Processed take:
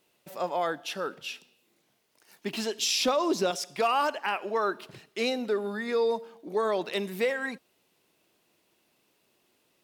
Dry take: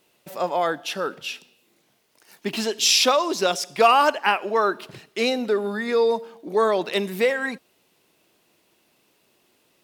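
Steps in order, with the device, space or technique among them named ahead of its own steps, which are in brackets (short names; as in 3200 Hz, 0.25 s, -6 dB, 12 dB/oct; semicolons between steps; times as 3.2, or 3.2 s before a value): 3–3.51 low shelf 490 Hz +10 dB; clipper into limiter (hard clip -7 dBFS, distortion -32 dB; limiter -11.5 dBFS, peak gain reduction 4.5 dB); gain -6 dB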